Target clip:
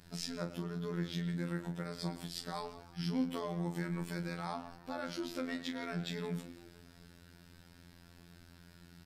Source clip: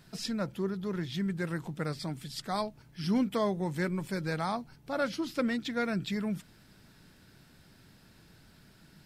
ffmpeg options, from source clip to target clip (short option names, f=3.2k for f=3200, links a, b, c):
-filter_complex "[0:a]alimiter=level_in=4dB:limit=-24dB:level=0:latency=1:release=166,volume=-4dB,asplit=2[a][b];[b]adelay=110,highpass=300,lowpass=3.4k,asoftclip=type=hard:threshold=-36dB,volume=-10dB[c];[a][c]amix=inputs=2:normalize=0,aeval=exprs='val(0)+0.00112*(sin(2*PI*60*n/s)+sin(2*PI*2*60*n/s)/2+sin(2*PI*3*60*n/s)/3+sin(2*PI*4*60*n/s)/4+sin(2*PI*5*60*n/s)/5)':c=same,asplit=2[d][e];[e]adelay=35,volume=-9dB[f];[d][f]amix=inputs=2:normalize=0,asplit=2[g][h];[h]asplit=4[i][j][k][l];[i]adelay=170,afreqshift=66,volume=-17dB[m];[j]adelay=340,afreqshift=132,volume=-23.2dB[n];[k]adelay=510,afreqshift=198,volume=-29.4dB[o];[l]adelay=680,afreqshift=264,volume=-35.6dB[p];[m][n][o][p]amix=inputs=4:normalize=0[q];[g][q]amix=inputs=2:normalize=0,afftfilt=real='hypot(re,im)*cos(PI*b)':imag='0':win_size=2048:overlap=0.75,volume=1.5dB"